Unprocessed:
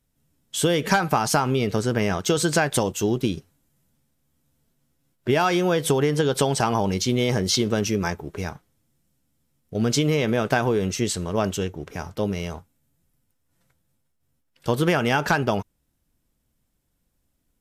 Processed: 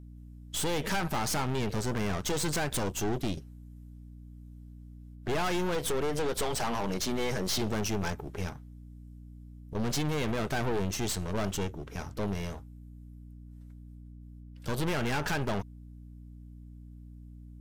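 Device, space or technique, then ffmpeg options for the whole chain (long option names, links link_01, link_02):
valve amplifier with mains hum: -filter_complex "[0:a]asettb=1/sr,asplit=3[link_01][link_02][link_03];[link_01]atrim=end=5.754[link_04];[link_02]atrim=start=5.75:end=7.58,asetpts=PTS-STARTPTS,afade=type=in:duration=0.004:curve=qsin,afade=type=out:start_time=1.826:duration=0.004:curve=qsin,highpass=160[link_05];[link_03]atrim=start=7.576[link_06];[link_04][link_05]acrossfade=duration=0.004:curve1=hsin:curve2=qsin[link_07];[link_07][link_06]acrossfade=duration=0.004:curve1=qsin:curve2=hsin,aeval=exprs='(tanh(25.1*val(0)+0.8)-tanh(0.8))/25.1':channel_layout=same,aeval=exprs='val(0)+0.00501*(sin(2*PI*60*n/s)+sin(2*PI*2*60*n/s)/2+sin(2*PI*3*60*n/s)/3+sin(2*PI*4*60*n/s)/4+sin(2*PI*5*60*n/s)/5)':channel_layout=same"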